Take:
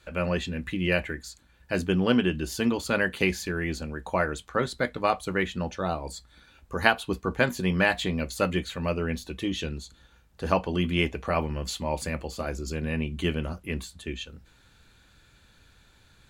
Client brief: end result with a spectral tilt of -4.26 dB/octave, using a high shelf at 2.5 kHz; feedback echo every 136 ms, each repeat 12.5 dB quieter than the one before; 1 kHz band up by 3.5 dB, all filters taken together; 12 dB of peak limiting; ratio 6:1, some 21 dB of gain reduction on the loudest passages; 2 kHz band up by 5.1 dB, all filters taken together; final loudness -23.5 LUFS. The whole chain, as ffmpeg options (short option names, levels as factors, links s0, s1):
-af "equalizer=f=1000:t=o:g=3.5,equalizer=f=2000:t=o:g=8.5,highshelf=f=2500:g=-7,acompressor=threshold=0.0178:ratio=6,alimiter=level_in=1.78:limit=0.0631:level=0:latency=1,volume=0.562,aecho=1:1:136|272|408:0.237|0.0569|0.0137,volume=8.41"